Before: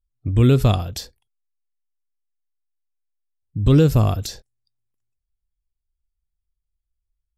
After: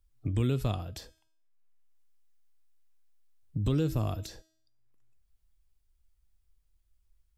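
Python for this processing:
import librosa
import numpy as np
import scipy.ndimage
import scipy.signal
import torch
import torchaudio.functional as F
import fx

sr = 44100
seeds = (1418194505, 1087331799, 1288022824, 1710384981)

y = fx.comb_fb(x, sr, f0_hz=320.0, decay_s=0.5, harmonics='all', damping=0.0, mix_pct=60)
y = fx.band_squash(y, sr, depth_pct=70)
y = y * 10.0 ** (-5.5 / 20.0)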